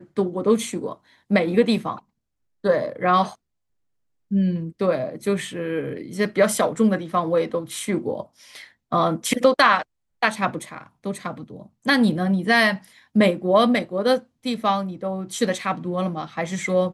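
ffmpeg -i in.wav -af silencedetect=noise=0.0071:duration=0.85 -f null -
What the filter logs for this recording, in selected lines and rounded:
silence_start: 3.35
silence_end: 4.31 | silence_duration: 0.96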